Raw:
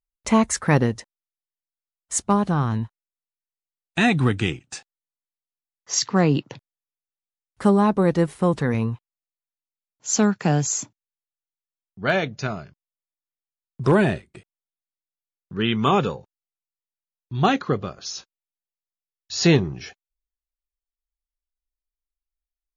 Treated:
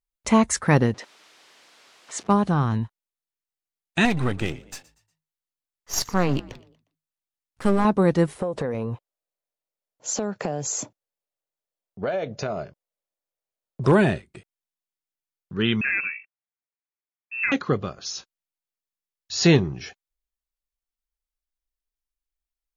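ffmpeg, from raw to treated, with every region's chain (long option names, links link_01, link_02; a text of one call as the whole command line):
ffmpeg -i in.wav -filter_complex "[0:a]asettb=1/sr,asplit=3[link_01][link_02][link_03];[link_01]atrim=end=0.944[link_04];[link_02]atrim=start=0.94:end=2.28,asetpts=PTS-STARTPTS,afade=type=in:duration=0.004:curve=qsin,afade=type=out:start_time=1.336:duration=0.004:curve=qsin,aeval=exprs='val(0)+0.5*0.0133*sgn(val(0))':channel_layout=same,acompressor=mode=upward:threshold=-42dB:ratio=2.5:attack=3.2:release=140:knee=2.83:detection=peak,highpass=300,lowpass=4500[link_05];[link_03]atrim=start=2.276[link_06];[link_04][link_05]acrossfade=duration=0.004:curve1=hsin:curve2=qsin[link_07];[link_07][link_06]acrossfade=duration=0.004:curve1=qsin:curve2=hsin,asettb=1/sr,asplit=3[link_08][link_09][link_10];[link_08]atrim=end=4.054[link_11];[link_09]atrim=start=4.05:end=7.85,asetpts=PTS-STARTPTS,afade=type=in:duration=0.004:curve=qsin,afade=type=out:start_time=3.796:duration=0.004:curve=qsin,aeval=exprs='if(lt(val(0),0),0.251*val(0),val(0))':channel_layout=same,asplit=4[link_12][link_13][link_14][link_15];[link_13]adelay=119,afreqshift=52,volume=-21dB[link_16];[link_14]adelay=238,afreqshift=104,volume=-29dB[link_17];[link_15]adelay=357,afreqshift=156,volume=-36.9dB[link_18];[link_12][link_16][link_17][link_18]amix=inputs=4:normalize=0,atrim=end_sample=167580[link_19];[link_10]atrim=start=7.846[link_20];[link_11][link_19]acrossfade=duration=0.004:curve1=hsin:curve2=qsin[link_21];[link_21][link_20]acrossfade=duration=0.004:curve1=qsin:curve2=hsin,asettb=1/sr,asplit=3[link_22][link_23][link_24];[link_22]atrim=end=8.364[link_25];[link_23]atrim=start=8.36:end=13.86,asetpts=PTS-STARTPTS,afade=type=in:duration=0.004:curve=qsin,afade=type=out:start_time=5.496:duration=0.004:curve=qsin,equalizer=frequency=560:width_type=o:width=1.1:gain=14.5,acompressor=threshold=-23dB:ratio=8:attack=3.2:release=140:knee=1:detection=peak[link_26];[link_24]atrim=start=13.856[link_27];[link_25][link_26]acrossfade=duration=0.004:curve1=hsin:curve2=qsin[link_28];[link_28][link_27]acrossfade=duration=0.004:curve1=qsin:curve2=hsin,asettb=1/sr,asplit=3[link_29][link_30][link_31];[link_29]atrim=end=15.814[link_32];[link_30]atrim=start=15.81:end=17.52,asetpts=PTS-STARTPTS,afade=type=in:duration=0.004:curve=qsin,afade=type=out:start_time=1.706:duration=0.004:curve=qsin,highpass=130,lowpass=frequency=2400:width_type=q:width=0.5098,lowpass=frequency=2400:width_type=q:width=0.6013,lowpass=frequency=2400:width_type=q:width=0.9,lowpass=frequency=2400:width_type=q:width=2.563,afreqshift=-2800,acompressor=threshold=-31dB:ratio=1.5:attack=3.2:release=140:knee=1:detection=peak[link_33];[link_31]atrim=start=17.516[link_34];[link_32][link_33]acrossfade=duration=0.004:curve1=hsin:curve2=qsin[link_35];[link_35][link_34]acrossfade=duration=0.004:curve1=qsin:curve2=hsin" out.wav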